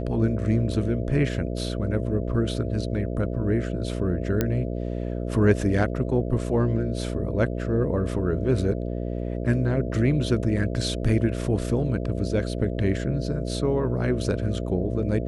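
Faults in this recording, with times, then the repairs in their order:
buzz 60 Hz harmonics 11 -29 dBFS
4.41 pop -9 dBFS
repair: de-click; de-hum 60 Hz, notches 11

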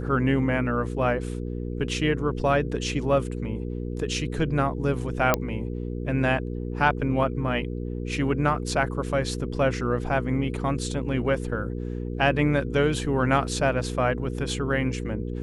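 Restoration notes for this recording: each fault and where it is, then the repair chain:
hum 60 Hz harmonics 8 -31 dBFS
5.34 pop -5 dBFS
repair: de-click; de-hum 60 Hz, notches 8

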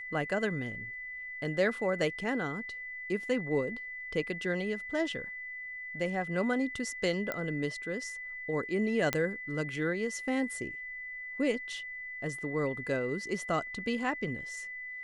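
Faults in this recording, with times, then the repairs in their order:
tone 2000 Hz -39 dBFS
7.32 pop -19 dBFS
9.13 pop -12 dBFS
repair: de-click; notch 2000 Hz, Q 30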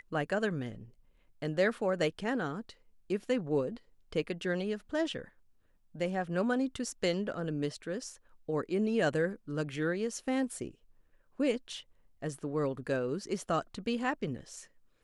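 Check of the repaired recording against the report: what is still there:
7.32 pop

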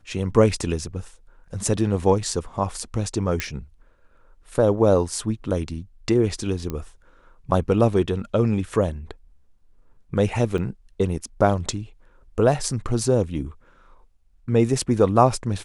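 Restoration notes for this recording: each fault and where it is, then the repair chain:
3.4 pop -8 dBFS
6.7 pop -15 dBFS
10.58 gap 4.5 ms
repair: de-click; interpolate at 10.58, 4.5 ms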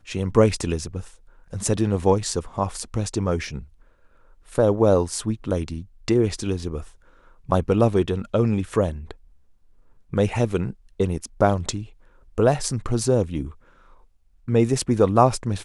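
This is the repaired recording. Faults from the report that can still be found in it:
none

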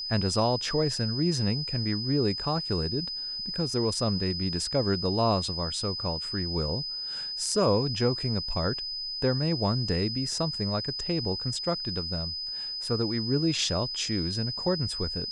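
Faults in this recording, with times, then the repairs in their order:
tone 5000 Hz -32 dBFS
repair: notch 5000 Hz, Q 30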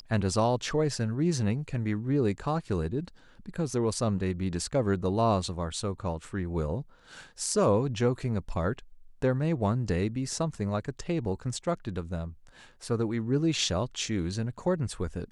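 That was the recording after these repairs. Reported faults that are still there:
none

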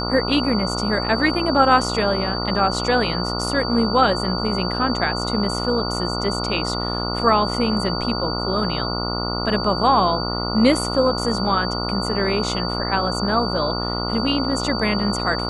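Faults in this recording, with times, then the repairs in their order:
buzz 60 Hz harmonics 24 -26 dBFS
tone 4600 Hz -27 dBFS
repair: notch 4600 Hz, Q 30; de-hum 60 Hz, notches 24

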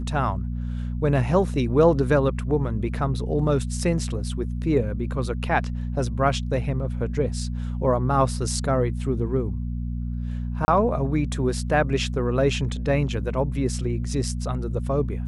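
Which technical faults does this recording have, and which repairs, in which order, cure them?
hum 60 Hz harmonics 4 -28 dBFS
10.65–10.68 gap 30 ms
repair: de-hum 60 Hz, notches 4; interpolate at 10.65, 30 ms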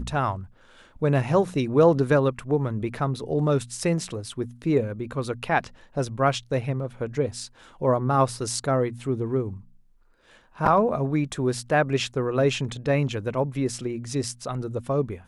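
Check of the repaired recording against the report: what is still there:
none

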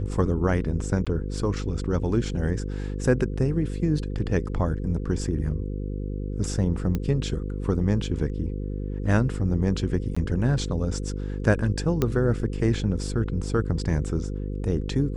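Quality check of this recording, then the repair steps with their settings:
buzz 50 Hz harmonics 10 -30 dBFS
1.05–1.07 gap 16 ms
6.95 pop -15 dBFS
10.15–10.16 gap 15 ms
12.02 pop -10 dBFS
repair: de-click; de-hum 50 Hz, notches 10; interpolate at 1.05, 16 ms; interpolate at 10.15, 15 ms

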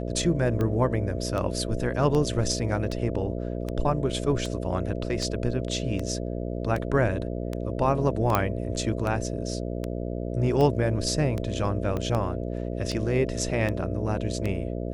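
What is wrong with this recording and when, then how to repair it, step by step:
buzz 60 Hz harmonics 11 -31 dBFS
tick 78 rpm -17 dBFS
8.35 pop -8 dBFS
11.97 pop -18 dBFS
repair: de-click; de-hum 60 Hz, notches 11

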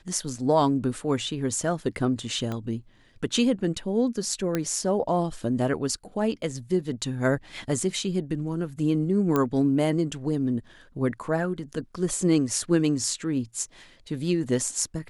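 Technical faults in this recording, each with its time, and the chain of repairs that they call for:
2.52 pop -19 dBFS
4.55 pop -12 dBFS
9.36 pop -11 dBFS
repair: de-click

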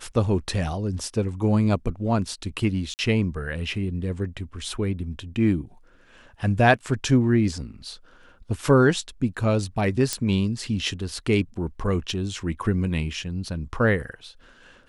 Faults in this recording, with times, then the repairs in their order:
2.94–2.99 gap 49 ms
10.13 pop -9 dBFS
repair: de-click; interpolate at 2.94, 49 ms

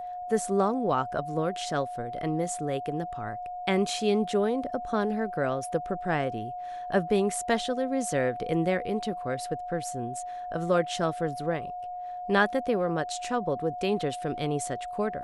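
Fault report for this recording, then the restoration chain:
tone 720 Hz -34 dBFS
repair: notch 720 Hz, Q 30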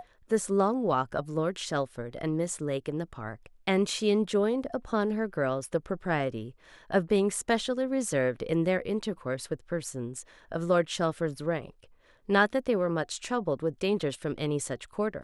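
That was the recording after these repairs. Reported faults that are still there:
none

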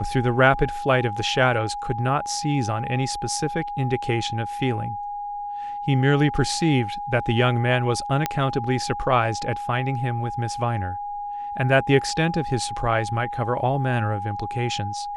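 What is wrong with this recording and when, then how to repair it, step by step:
tone 820 Hz -28 dBFS
8.26 pop -7 dBFS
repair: de-click; notch 820 Hz, Q 30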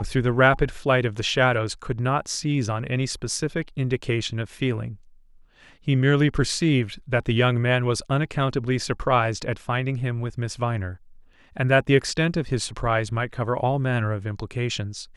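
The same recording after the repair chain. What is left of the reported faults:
none

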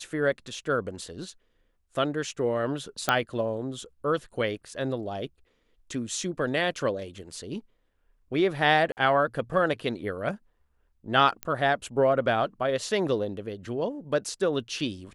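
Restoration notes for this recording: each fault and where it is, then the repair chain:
3.09 pop -8 dBFS
8.92–8.97 gap 49 ms
11.43 pop -15 dBFS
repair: de-click; interpolate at 8.92, 49 ms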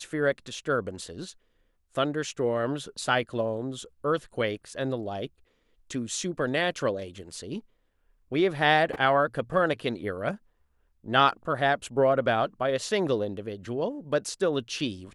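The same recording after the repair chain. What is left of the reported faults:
none

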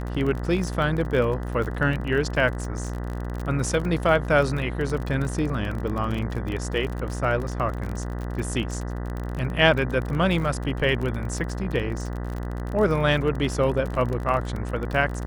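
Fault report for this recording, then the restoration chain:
buzz 60 Hz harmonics 33 -30 dBFS
crackle 34/s -29 dBFS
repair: de-click; de-hum 60 Hz, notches 33

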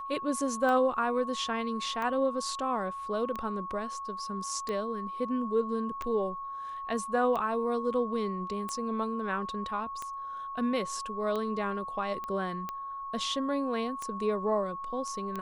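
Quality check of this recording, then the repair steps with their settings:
tick 45 rpm -22 dBFS
tone 1100 Hz -36 dBFS
12.24 pop -25 dBFS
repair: de-click; notch 1100 Hz, Q 30

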